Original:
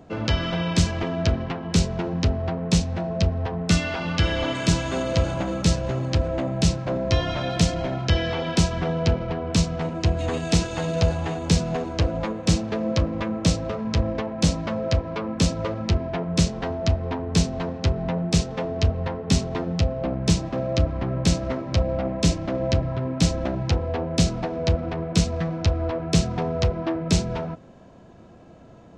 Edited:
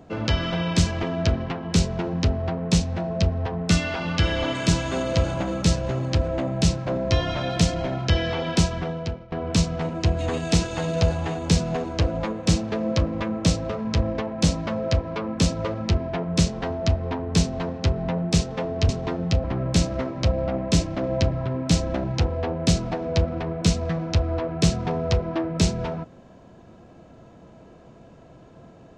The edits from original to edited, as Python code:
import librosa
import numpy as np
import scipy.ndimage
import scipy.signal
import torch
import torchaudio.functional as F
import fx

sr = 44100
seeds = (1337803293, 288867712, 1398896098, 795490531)

y = fx.edit(x, sr, fx.fade_out_to(start_s=8.61, length_s=0.71, floor_db=-22.5),
    fx.cut(start_s=18.89, length_s=0.48),
    fx.cut(start_s=19.92, length_s=1.03), tone=tone)